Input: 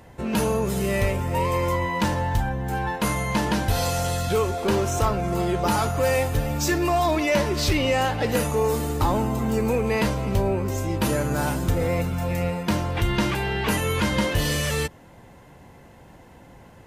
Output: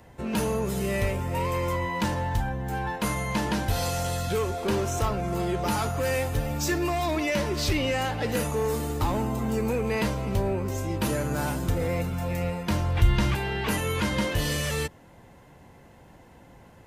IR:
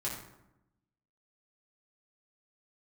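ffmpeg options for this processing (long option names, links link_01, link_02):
-filter_complex "[0:a]asettb=1/sr,asplit=3[link_01][link_02][link_03];[link_01]atrim=end=12.384[link_04];[link_02]atrim=start=12.38:end=13.36,asetpts=PTS-STARTPTS,afade=type=in:duration=0.004:curve=qsin,afade=type=out:start_time=0.976:duration=0.004:curve=qsin,asubboost=boost=11.5:cutoff=130[link_05];[link_03]atrim=start=13.356[link_06];[link_04][link_05]acrossfade=duration=0.004:curve1=hsin:curve2=qsin[link_07];[link_07][link_06]acrossfade=duration=0.004:curve1=qsin:curve2=hsin,acrossover=split=430|1200|4200[link_08][link_09][link_10][link_11];[link_09]asoftclip=type=hard:threshold=-27dB[link_12];[link_08][link_12][link_10][link_11]amix=inputs=4:normalize=0,volume=-3.5dB"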